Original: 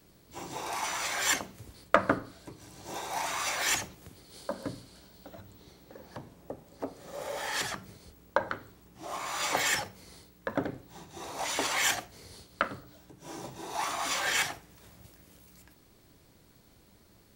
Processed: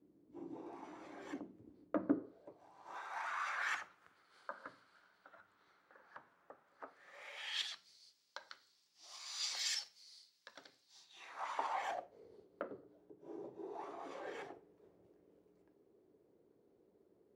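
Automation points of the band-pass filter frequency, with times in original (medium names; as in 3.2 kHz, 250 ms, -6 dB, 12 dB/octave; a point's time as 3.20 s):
band-pass filter, Q 3.5
2.10 s 300 Hz
3.01 s 1.4 kHz
6.83 s 1.4 kHz
7.92 s 4.8 kHz
11.03 s 4.8 kHz
11.43 s 1.2 kHz
12.30 s 410 Hz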